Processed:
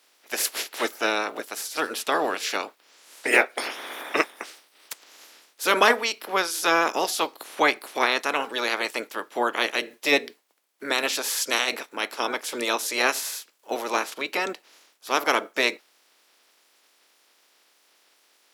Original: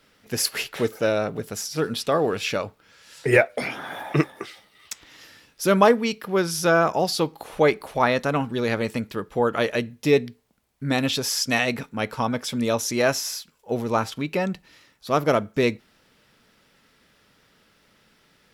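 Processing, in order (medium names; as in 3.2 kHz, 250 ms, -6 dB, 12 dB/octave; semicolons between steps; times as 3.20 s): spectral peaks clipped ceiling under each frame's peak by 19 dB; high-pass 290 Hz 24 dB/octave; trim -1.5 dB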